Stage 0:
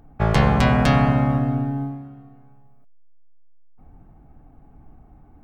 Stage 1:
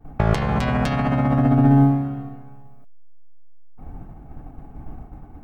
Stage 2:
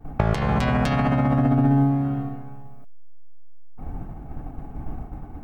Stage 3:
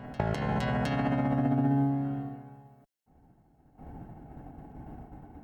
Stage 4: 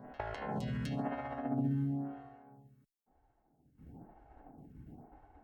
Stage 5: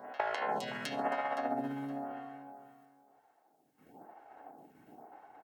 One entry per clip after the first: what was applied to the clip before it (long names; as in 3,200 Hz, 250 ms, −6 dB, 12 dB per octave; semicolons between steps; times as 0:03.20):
compressor whose output falls as the input rises −25 dBFS, ratio −1; downward expander −37 dBFS; level +7 dB
downward compressor 3 to 1, threshold −22 dBFS, peak gain reduction 8.5 dB; level +4 dB
notch comb filter 1,200 Hz; backwards echo 713 ms −15.5 dB; level −6.5 dB
phaser with staggered stages 1 Hz; level −5.5 dB
high-pass filter 540 Hz 12 dB per octave; repeating echo 517 ms, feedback 17%, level −14 dB; level +8.5 dB